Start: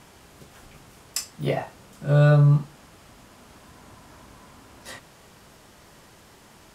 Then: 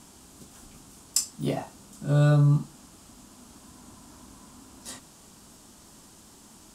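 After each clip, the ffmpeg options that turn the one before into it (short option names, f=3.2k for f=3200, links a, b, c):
-af "equalizer=f=125:t=o:w=1:g=-5,equalizer=f=250:t=o:w=1:g=7,equalizer=f=500:t=o:w=1:g=-7,equalizer=f=2k:t=o:w=1:g=-9,equalizer=f=8k:t=o:w=1:g=8,volume=-1dB"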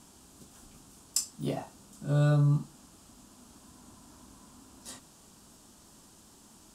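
-af "equalizer=f=2.1k:w=4.4:g=-3.5,volume=-4.5dB"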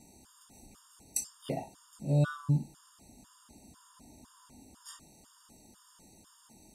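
-af "afftfilt=real='re*gt(sin(2*PI*2*pts/sr)*(1-2*mod(floor(b*sr/1024/930),2)),0)':imag='im*gt(sin(2*PI*2*pts/sr)*(1-2*mod(floor(b*sr/1024/930),2)),0)':win_size=1024:overlap=0.75"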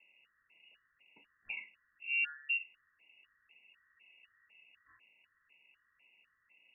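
-af "lowpass=f=2.5k:t=q:w=0.5098,lowpass=f=2.5k:t=q:w=0.6013,lowpass=f=2.5k:t=q:w=0.9,lowpass=f=2.5k:t=q:w=2.563,afreqshift=-2900,volume=-7.5dB"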